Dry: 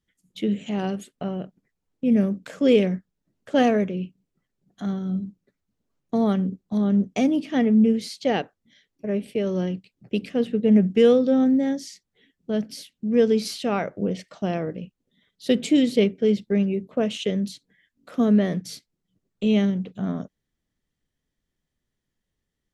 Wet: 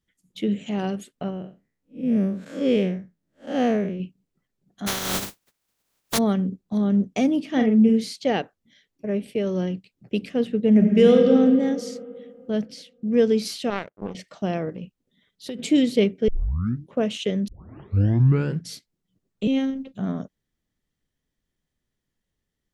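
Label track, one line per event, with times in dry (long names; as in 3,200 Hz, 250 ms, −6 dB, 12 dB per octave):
1.300000	4.000000	spectrum smeared in time width 144 ms
4.860000	6.170000	compressing power law on the bin magnitudes exponent 0.22
7.490000	8.160000	double-tracking delay 45 ms −5.5 dB
10.700000	11.310000	thrown reverb, RT60 2.3 s, DRR 2 dB
12.650000	13.080000	high-frequency loss of the air 68 metres
13.700000	14.150000	power curve on the samples exponent 2
14.690000	15.590000	downward compressor, threshold −29 dBFS
16.280000	16.280000	tape start 0.70 s
17.480000	17.480000	tape start 1.24 s
19.470000	19.940000	phases set to zero 268 Hz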